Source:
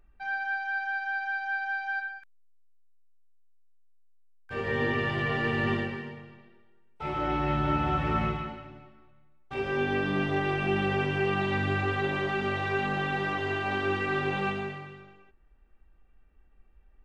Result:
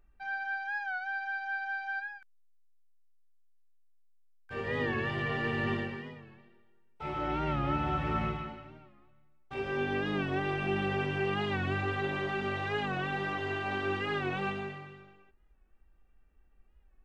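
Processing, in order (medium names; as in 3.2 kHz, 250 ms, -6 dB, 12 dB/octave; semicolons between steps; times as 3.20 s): warped record 45 rpm, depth 100 cents; trim -4 dB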